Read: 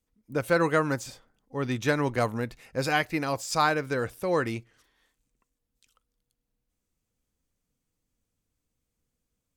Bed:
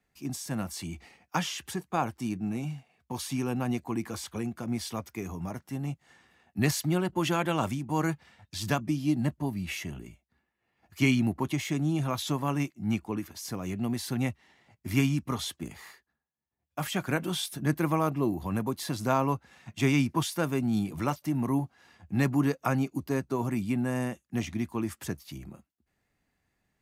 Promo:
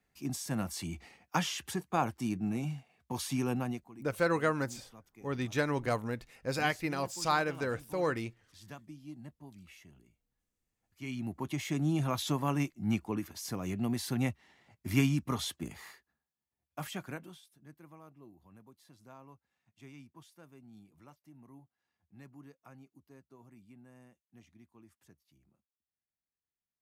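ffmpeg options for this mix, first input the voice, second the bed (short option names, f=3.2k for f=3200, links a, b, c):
-filter_complex "[0:a]adelay=3700,volume=-5.5dB[a];[1:a]volume=16.5dB,afade=t=out:st=3.52:d=0.37:silence=0.11885,afade=t=in:st=11.02:d=0.87:silence=0.125893,afade=t=out:st=16.25:d=1.16:silence=0.0530884[b];[a][b]amix=inputs=2:normalize=0"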